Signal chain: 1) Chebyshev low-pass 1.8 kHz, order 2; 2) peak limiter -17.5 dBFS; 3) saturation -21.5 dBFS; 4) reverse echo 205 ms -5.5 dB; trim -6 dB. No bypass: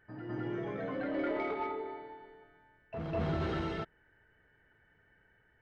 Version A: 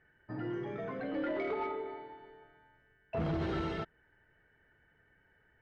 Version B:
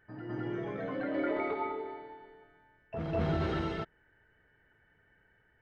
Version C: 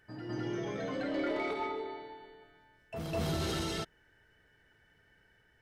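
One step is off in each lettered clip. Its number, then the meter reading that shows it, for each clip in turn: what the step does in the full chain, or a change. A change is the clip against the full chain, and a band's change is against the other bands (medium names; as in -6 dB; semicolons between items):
4, crest factor change -2.5 dB; 3, distortion -17 dB; 1, 4 kHz band +9.5 dB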